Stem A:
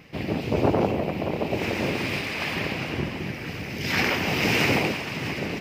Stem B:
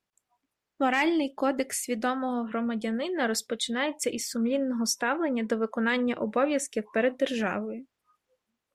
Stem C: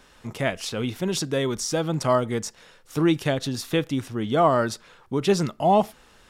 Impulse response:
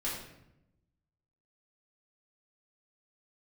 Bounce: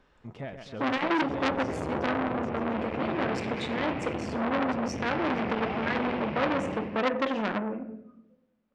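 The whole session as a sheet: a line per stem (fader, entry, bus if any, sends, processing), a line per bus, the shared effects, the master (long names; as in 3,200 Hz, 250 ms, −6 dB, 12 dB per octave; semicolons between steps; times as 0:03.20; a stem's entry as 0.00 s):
+1.5 dB, 1.15 s, bus A, no send, echo send −4 dB, low-pass filter 3,200 Hz 12 dB per octave; brickwall limiter −16.5 dBFS, peak gain reduction 8 dB; string-ensemble chorus
+1.0 dB, 0.00 s, no bus, send −7 dB, no echo send, no processing
−6.5 dB, 0.00 s, bus A, no send, echo send −12 dB, no processing
bus A: 0.0 dB, brickwall limiter −22.5 dBFS, peak gain reduction 10.5 dB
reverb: on, RT60 0.85 s, pre-delay 3 ms
echo: repeating echo 132 ms, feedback 56%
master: head-to-tape spacing loss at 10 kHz 27 dB; saturating transformer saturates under 2,100 Hz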